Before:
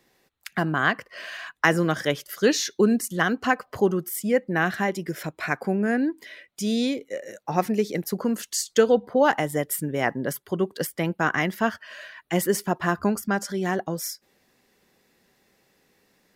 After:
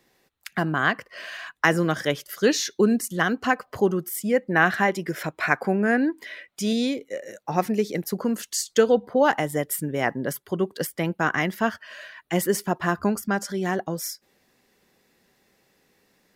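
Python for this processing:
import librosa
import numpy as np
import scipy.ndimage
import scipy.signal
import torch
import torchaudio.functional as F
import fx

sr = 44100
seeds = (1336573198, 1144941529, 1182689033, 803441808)

y = fx.peak_eq(x, sr, hz=1300.0, db=5.5, octaves=2.8, at=(4.49, 6.73))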